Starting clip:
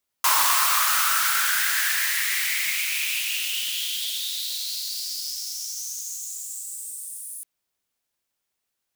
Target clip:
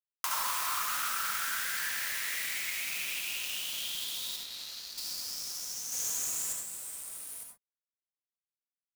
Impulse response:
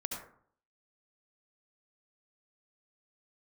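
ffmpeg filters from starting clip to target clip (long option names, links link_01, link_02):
-filter_complex "[0:a]asettb=1/sr,asplit=3[link_01][link_02][link_03];[link_01]atrim=end=4.364[link_04];[link_02]atrim=start=4.36:end=4.98,asetpts=PTS-STARTPTS,afade=type=in:duration=0.004:curve=qsin,afade=type=out:start_time=0.616:duration=0.004:curve=qsin,aemphasis=mode=reproduction:type=bsi[link_05];[link_03]atrim=start=4.976[link_06];[link_04][link_05]acrossfade=duration=0.004:curve1=hsin:curve2=qsin[link_07];[link_07][link_06]acrossfade=duration=0.004:curve1=qsin:curve2=hsin,acompressor=threshold=-31dB:ratio=3,aeval=exprs='sgn(val(0))*max(abs(val(0))-0.0106,0)':channel_layout=same,asettb=1/sr,asplit=3[link_08][link_09][link_10];[link_08]atrim=end=5.924[link_11];[link_09]atrim=start=5.92:end=6.53,asetpts=PTS-STARTPTS,afade=type=in:duration=0.004:curve=qsin,afade=type=out:start_time=0.606:duration=0.004:curve=qsin,aeval=exprs='0.0631*(cos(1*acos(clip(val(0)/0.0631,-1,1)))-cos(1*PI/2))+0.0251*(cos(5*acos(clip(val(0)/0.0631,-1,1)))-cos(5*PI/2))':channel_layout=same[link_12];[link_10]atrim=start=6.526[link_13];[link_11][link_12]acrossfade=duration=0.004:curve1=hsin:curve2=qsin[link_14];[link_14][link_13]acrossfade=duration=0.004:curve1=qsin:curve2=hsin[link_15];[1:a]atrim=start_sample=2205,afade=type=out:start_time=0.19:duration=0.01,atrim=end_sample=8820[link_16];[link_15][link_16]afir=irnorm=-1:irlink=0"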